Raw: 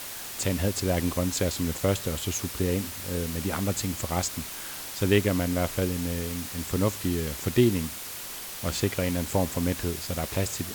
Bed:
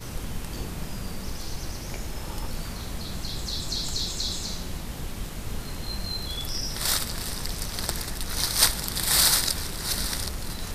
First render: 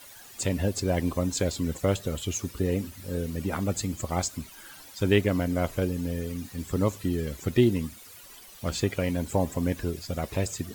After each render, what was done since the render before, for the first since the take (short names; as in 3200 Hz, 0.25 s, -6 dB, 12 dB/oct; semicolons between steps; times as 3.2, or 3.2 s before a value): denoiser 14 dB, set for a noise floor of -38 dBFS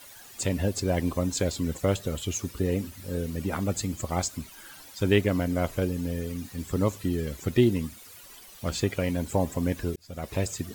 9.96–10.37 fade in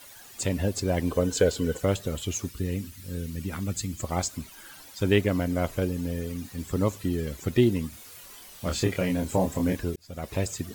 1.1–1.83 small resonant body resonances 460/1500/3000 Hz, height 14 dB; 2.49–4 bell 650 Hz -11 dB 1.9 oct; 7.9–9.77 doubler 27 ms -3.5 dB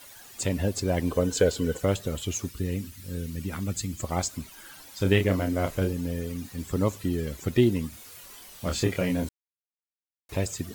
4.89–5.93 doubler 31 ms -6.5 dB; 9.29–10.29 mute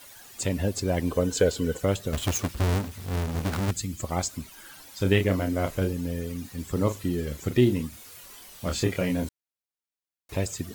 2.13–3.71 half-waves squared off; 6.72–7.83 doubler 40 ms -9.5 dB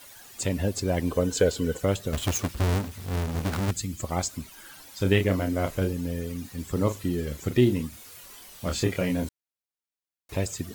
nothing audible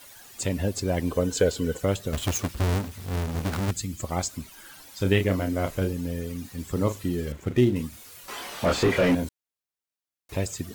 7.32–7.76 median filter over 9 samples; 8.28–9.15 overdrive pedal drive 29 dB, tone 1100 Hz, clips at -11 dBFS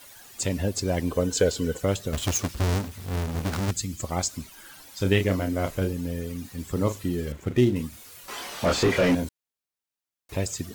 dynamic EQ 5700 Hz, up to +4 dB, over -44 dBFS, Q 1.2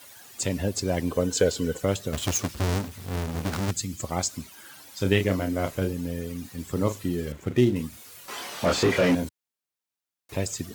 HPF 80 Hz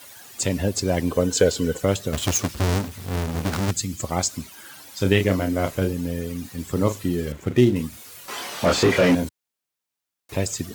gain +4 dB; limiter -3 dBFS, peak gain reduction 1 dB